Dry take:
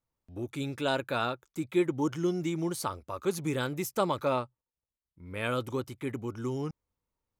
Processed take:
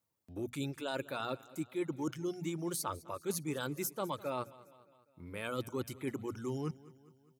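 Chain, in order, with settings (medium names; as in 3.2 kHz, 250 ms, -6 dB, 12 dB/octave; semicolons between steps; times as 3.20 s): reverse; compression 6:1, threshold -36 dBFS, peak gain reduction 14 dB; reverse; high-pass 110 Hz; bass shelf 380 Hz +3.5 dB; hum notches 60/120/180/240 Hz; reverb removal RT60 0.76 s; treble shelf 6.2 kHz +8 dB; feedback delay 204 ms, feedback 56%, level -20 dB; trim +1 dB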